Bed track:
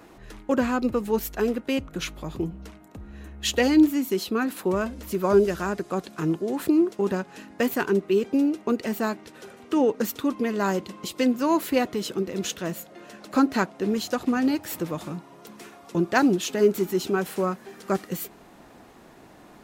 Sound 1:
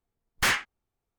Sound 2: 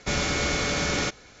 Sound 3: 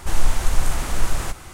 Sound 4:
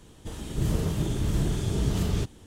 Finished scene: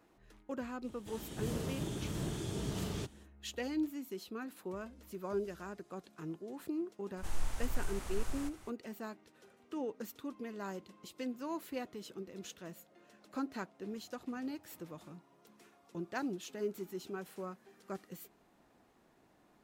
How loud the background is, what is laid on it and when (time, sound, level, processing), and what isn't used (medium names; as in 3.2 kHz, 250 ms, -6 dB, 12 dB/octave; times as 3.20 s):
bed track -18 dB
0.81 s: add 4 -7 dB, fades 0.05 s + high-pass 200 Hz 6 dB/octave
7.17 s: add 3 -17.5 dB
not used: 1, 2